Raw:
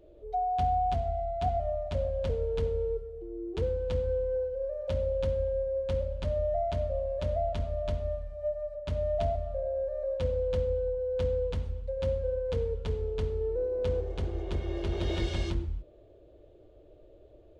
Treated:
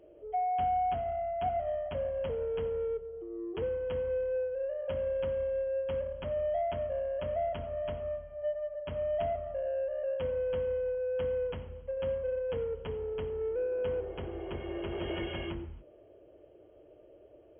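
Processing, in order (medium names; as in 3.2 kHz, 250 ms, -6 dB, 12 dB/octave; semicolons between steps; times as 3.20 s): high-pass 260 Hz 6 dB/octave; in parallel at -5 dB: saturation -38.5 dBFS, distortion -8 dB; on the sum: brick-wall FIR low-pass 3.3 kHz; trim -2 dB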